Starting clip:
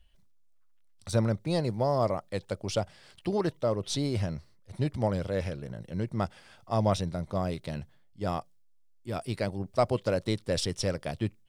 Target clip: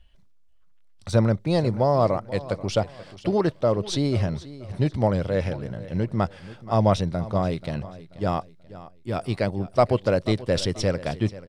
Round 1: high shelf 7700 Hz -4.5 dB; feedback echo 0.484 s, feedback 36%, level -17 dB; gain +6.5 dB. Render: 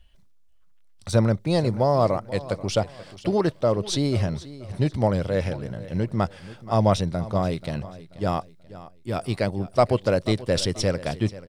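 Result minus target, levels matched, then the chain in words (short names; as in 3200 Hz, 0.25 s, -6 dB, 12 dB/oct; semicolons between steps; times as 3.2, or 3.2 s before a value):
8000 Hz band +3.5 dB
high shelf 7700 Hz -13.5 dB; feedback echo 0.484 s, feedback 36%, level -17 dB; gain +6.5 dB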